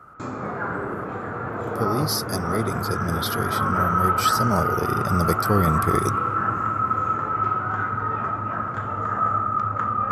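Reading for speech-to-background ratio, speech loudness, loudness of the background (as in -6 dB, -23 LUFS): -1.5 dB, -26.0 LUFS, -24.5 LUFS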